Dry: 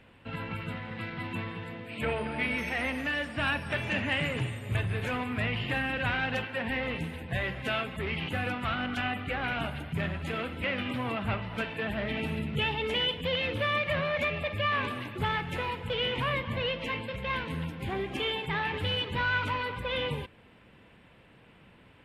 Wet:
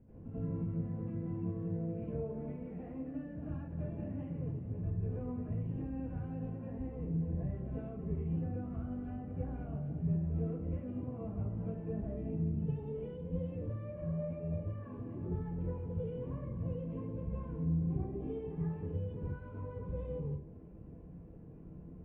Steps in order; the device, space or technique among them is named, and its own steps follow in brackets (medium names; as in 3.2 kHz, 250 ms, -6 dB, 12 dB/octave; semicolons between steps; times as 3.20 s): television next door (compression, threshold -41 dBFS, peak gain reduction 15.5 dB; low-pass 280 Hz 12 dB/octave; reverberation RT60 0.40 s, pre-delay 83 ms, DRR -10.5 dB)